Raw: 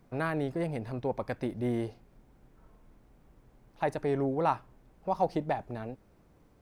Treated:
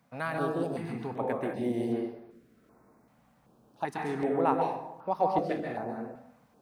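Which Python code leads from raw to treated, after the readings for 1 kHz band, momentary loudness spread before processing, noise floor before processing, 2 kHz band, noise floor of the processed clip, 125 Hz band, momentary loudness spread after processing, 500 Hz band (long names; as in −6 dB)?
+2.5 dB, 11 LU, −62 dBFS, +1.0 dB, −65 dBFS, −3.5 dB, 11 LU, +1.5 dB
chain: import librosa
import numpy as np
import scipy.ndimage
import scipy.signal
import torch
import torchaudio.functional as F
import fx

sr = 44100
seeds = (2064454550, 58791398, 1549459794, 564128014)

y = scipy.signal.sosfilt(scipy.signal.butter(2, 190.0, 'highpass', fs=sr, output='sos'), x)
y = fx.rev_plate(y, sr, seeds[0], rt60_s=0.91, hf_ratio=0.55, predelay_ms=120, drr_db=-0.5)
y = fx.filter_held_notch(y, sr, hz=2.6, low_hz=370.0, high_hz=7400.0)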